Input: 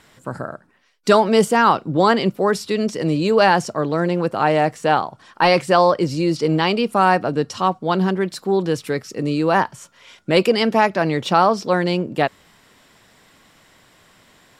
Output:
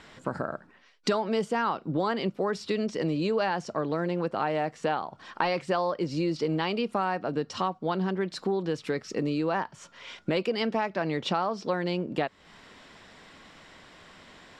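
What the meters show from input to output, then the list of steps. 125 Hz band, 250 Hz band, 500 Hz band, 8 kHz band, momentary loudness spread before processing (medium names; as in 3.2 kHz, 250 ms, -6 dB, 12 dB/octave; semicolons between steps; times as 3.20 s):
-10.0 dB, -9.5 dB, -10.5 dB, -12.5 dB, 9 LU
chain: low-pass 5.3 kHz 12 dB/octave; peaking EQ 120 Hz -7.5 dB 0.34 oct; compression 4:1, threshold -29 dBFS, peak gain reduction 16.5 dB; trim +2 dB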